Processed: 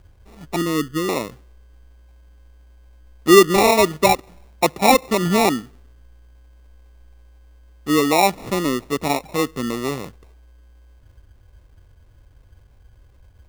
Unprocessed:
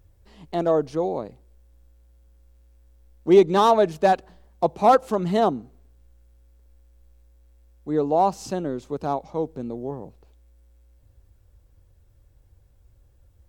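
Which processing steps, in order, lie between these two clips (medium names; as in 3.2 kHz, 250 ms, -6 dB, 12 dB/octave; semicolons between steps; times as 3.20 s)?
0.56–1.09 s: inverse Chebyshev band-stop 1.4–8.2 kHz, stop band 70 dB; dynamic bell 290 Hz, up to +6 dB, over -33 dBFS, Q 1.4; in parallel at +2.5 dB: compression, threshold -27 dBFS, peak gain reduction 19 dB; on the sum: sample-and-hold 28×; trim -1 dB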